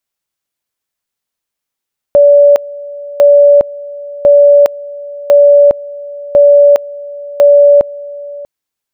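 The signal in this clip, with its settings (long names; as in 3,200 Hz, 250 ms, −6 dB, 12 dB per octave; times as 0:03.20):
tone at two levels in turn 575 Hz −1.5 dBFS, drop 20.5 dB, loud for 0.41 s, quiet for 0.64 s, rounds 6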